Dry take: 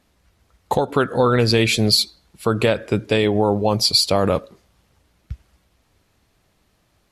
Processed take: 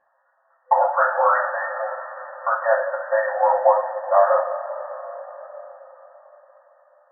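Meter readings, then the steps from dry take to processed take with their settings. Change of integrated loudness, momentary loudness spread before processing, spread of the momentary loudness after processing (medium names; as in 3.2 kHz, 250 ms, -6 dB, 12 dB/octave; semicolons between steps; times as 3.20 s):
-2.5 dB, 8 LU, 18 LU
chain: FFT band-pass 510–1900 Hz; two-slope reverb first 0.36 s, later 4.6 s, from -18 dB, DRR -7.5 dB; trim -2.5 dB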